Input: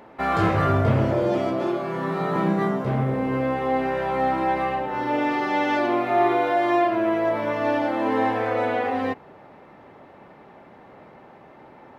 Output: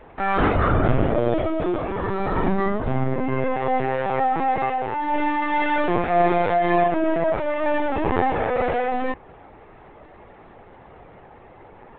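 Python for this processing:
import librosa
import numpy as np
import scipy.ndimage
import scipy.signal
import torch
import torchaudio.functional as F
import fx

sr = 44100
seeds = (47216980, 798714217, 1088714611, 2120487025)

y = fx.lpc_vocoder(x, sr, seeds[0], excitation='pitch_kept', order=16)
y = F.gain(torch.from_numpy(y), 1.5).numpy()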